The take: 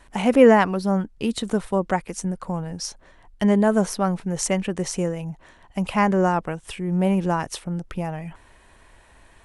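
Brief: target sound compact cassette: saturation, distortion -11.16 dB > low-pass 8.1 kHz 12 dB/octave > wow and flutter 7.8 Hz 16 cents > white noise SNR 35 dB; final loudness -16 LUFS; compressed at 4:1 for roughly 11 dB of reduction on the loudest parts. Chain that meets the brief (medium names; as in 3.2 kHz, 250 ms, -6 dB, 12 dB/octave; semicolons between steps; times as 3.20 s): compression 4:1, threshold -21 dBFS; saturation -23.5 dBFS; low-pass 8.1 kHz 12 dB/octave; wow and flutter 7.8 Hz 16 cents; white noise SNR 35 dB; trim +15 dB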